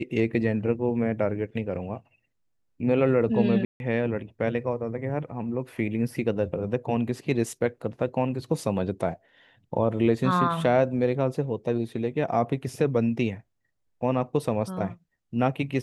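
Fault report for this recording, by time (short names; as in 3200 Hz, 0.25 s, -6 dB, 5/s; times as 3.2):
3.65–3.8 gap 0.151 s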